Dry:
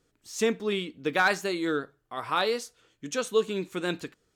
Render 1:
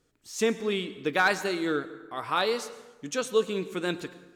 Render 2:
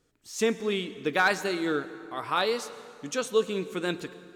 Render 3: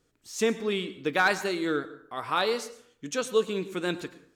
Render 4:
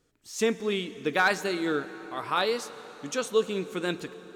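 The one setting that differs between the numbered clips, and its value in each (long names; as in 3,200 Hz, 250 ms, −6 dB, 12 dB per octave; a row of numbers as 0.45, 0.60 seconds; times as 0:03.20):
dense smooth reverb, RT60: 1.2, 2.5, 0.57, 5.3 seconds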